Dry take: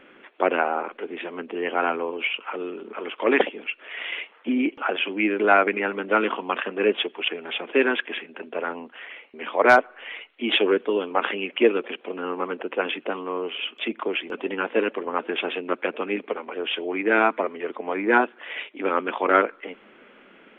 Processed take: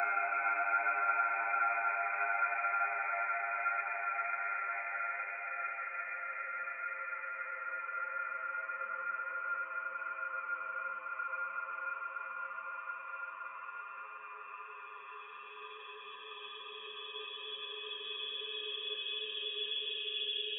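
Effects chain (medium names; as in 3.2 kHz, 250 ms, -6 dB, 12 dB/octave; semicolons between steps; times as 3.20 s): expander on every frequency bin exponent 3; Paulstretch 14×, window 1.00 s, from 5.48 s; Bessel high-pass 2.2 kHz, order 2; trim +3 dB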